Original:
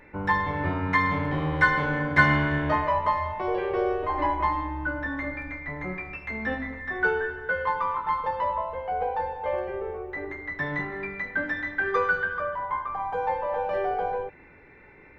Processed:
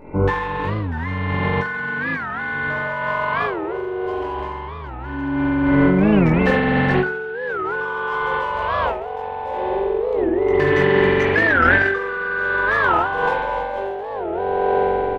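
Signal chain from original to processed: Wiener smoothing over 25 samples; spring tank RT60 3.6 s, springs 43 ms, chirp 30 ms, DRR -9.5 dB; negative-ratio compressor -27 dBFS, ratio -1; doubler 21 ms -5.5 dB; record warp 45 rpm, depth 250 cents; gain +5 dB

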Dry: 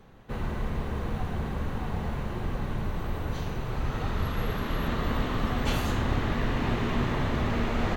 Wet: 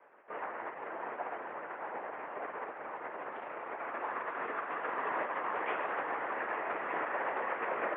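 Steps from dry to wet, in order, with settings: LPC vocoder at 8 kHz whisper; mistuned SSB -81 Hz 560–2300 Hz

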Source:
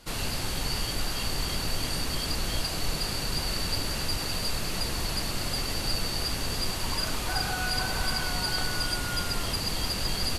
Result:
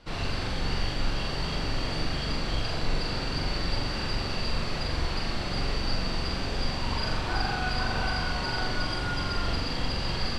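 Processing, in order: air absorption 150 m; notch 6700 Hz, Q 11; flutter echo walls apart 7.4 m, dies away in 0.73 s

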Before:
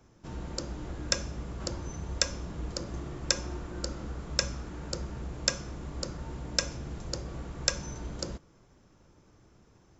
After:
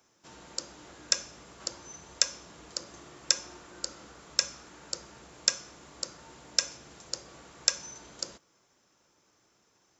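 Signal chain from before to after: HPF 740 Hz 6 dB/oct; high shelf 3700 Hz +8 dB; gain -2.5 dB

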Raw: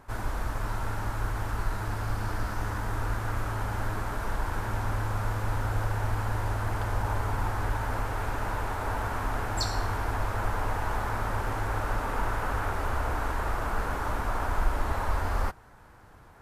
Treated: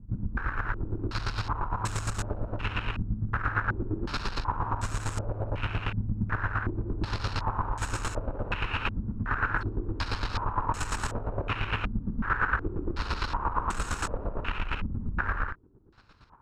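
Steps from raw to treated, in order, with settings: minimum comb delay 0.75 ms; in parallel at -5 dB: companded quantiser 2-bit; on the sum: chopper 8.7 Hz, depth 65%, duty 30%; on a send: reverse echo 0.67 s -20.5 dB; on the sum: compressor, threshold -26 dBFS, peak gain reduction 7 dB; stepped low-pass 2.7 Hz 210–7600 Hz

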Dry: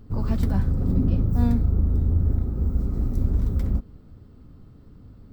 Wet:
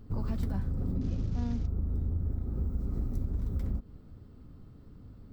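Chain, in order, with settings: 1.01–1.67 CVSD 32 kbps; compressor, threshold -24 dBFS, peak gain reduction 9.5 dB; gain -3.5 dB

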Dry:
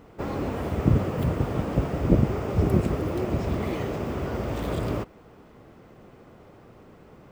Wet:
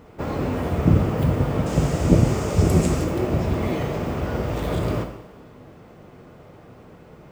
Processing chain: 1.66–3.04 bell 7200 Hz +15 dB 1.4 oct; two-slope reverb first 0.77 s, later 2.4 s, DRR 4 dB; gain +2.5 dB

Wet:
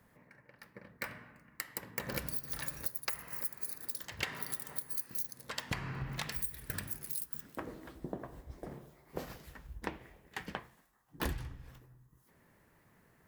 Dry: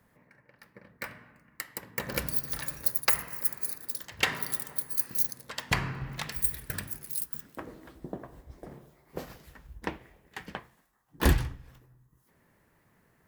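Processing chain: compressor 6:1, threshold -34 dBFS, peak gain reduction 16 dB

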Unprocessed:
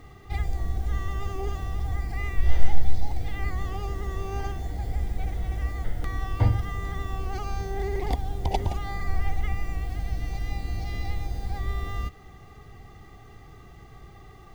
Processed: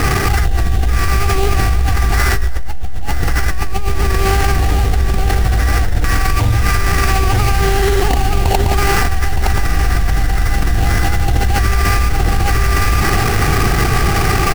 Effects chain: resonant high shelf 2600 Hz -13 dB, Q 3; sample-rate reducer 3600 Hz, jitter 20%; echo 0.916 s -8 dB; fast leveller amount 100%; gain -7 dB

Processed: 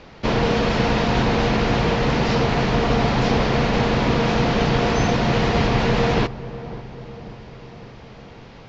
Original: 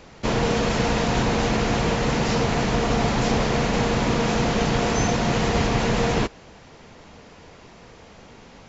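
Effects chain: LPF 5100 Hz 24 dB/oct; darkening echo 0.546 s, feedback 64%, low-pass 1000 Hz, level -15 dB; gain +2.5 dB

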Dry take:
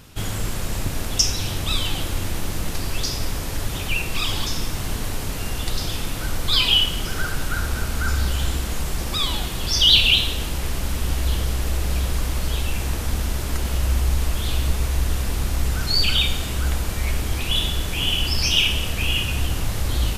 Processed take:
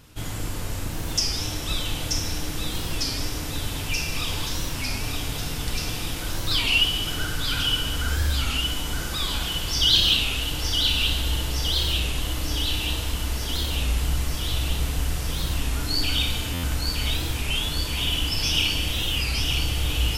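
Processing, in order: thinning echo 0.915 s, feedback 75%, high-pass 1100 Hz, level -4 dB; FDN reverb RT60 2 s, low-frequency decay 1.3×, high-frequency decay 0.75×, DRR 2 dB; stuck buffer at 16.53, samples 512, times 8; record warp 33 1/3 rpm, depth 160 cents; gain -6 dB

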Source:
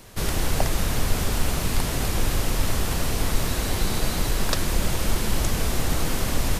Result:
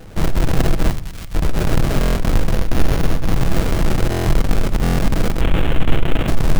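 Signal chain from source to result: half-waves squared off; sample-rate reducer 1000 Hz, jitter 20%; 5.41–6.28 resonant high shelf 3900 Hz -8 dB, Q 3; limiter -12.5 dBFS, peak gain reduction 30.5 dB; 0.91–1.35 passive tone stack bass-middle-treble 5-5-5; 2.53–3.34 notch 7800 Hz, Q 9.1; reverb RT60 0.60 s, pre-delay 6 ms, DRR 11 dB; stuck buffer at 2/4.1/4.82, samples 1024, times 6; gain +3 dB

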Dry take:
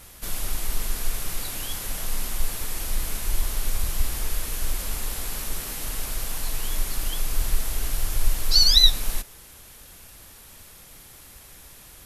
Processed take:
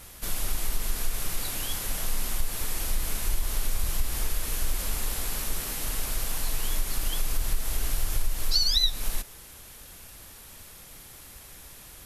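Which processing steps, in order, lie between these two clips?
compressor 4:1, threshold -20 dBFS, peak gain reduction 10.5 dB

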